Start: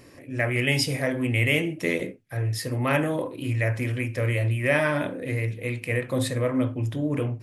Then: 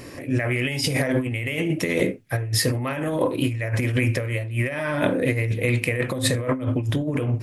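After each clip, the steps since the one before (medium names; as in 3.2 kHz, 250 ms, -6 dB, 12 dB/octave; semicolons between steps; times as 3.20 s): in parallel at +2.5 dB: peak limiter -19.5 dBFS, peak gain reduction 11 dB; on the sum: compressor with a negative ratio -22 dBFS, ratio -0.5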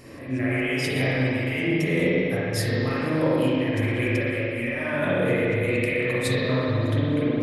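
spring tank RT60 2.6 s, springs 38/47 ms, chirp 25 ms, DRR -8.5 dB; trim -8.5 dB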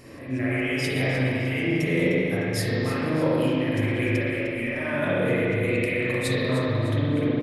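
feedback delay 304 ms, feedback 42%, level -12 dB; trim -1 dB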